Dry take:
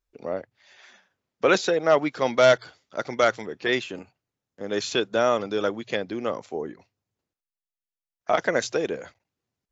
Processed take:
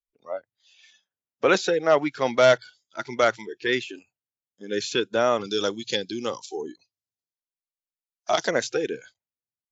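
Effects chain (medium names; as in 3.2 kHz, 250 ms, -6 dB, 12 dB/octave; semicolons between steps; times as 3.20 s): spectral noise reduction 21 dB; 5.44–8.51 s: resonant high shelf 3 kHz +11 dB, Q 1.5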